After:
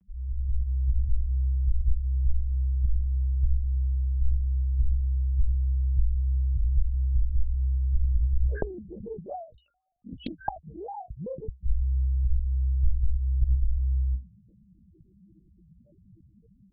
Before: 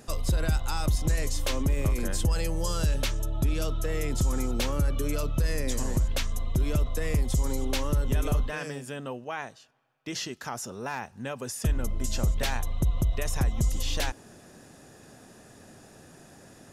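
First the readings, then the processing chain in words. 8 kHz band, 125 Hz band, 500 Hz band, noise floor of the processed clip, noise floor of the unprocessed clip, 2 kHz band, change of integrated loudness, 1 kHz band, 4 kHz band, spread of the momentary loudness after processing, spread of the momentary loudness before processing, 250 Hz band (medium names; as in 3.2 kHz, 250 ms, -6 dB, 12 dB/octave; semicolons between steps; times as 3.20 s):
under -40 dB, +2.5 dB, -9.0 dB, -61 dBFS, -53 dBFS, -16.5 dB, +1.0 dB, -5.5 dB, -23.5 dB, 11 LU, 8 LU, -12.0 dB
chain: level rider gain up to 8 dB; loudest bins only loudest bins 1; monotone LPC vocoder at 8 kHz 130 Hz; frequency shift -65 Hz; loudspeaker Doppler distortion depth 0.83 ms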